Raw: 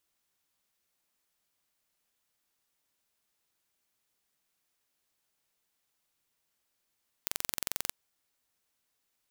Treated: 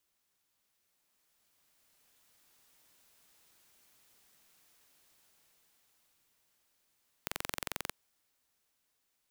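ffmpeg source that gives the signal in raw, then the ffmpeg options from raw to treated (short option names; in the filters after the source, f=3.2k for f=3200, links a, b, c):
-f lavfi -i "aevalsrc='0.596*eq(mod(n,1969),0)':d=0.64:s=44100"
-filter_complex "[0:a]dynaudnorm=f=530:g=7:m=13dB,acrossover=split=340|1200|3100[a][b][c][d];[d]alimiter=limit=-14.5dB:level=0:latency=1:release=15[e];[a][b][c][e]amix=inputs=4:normalize=0"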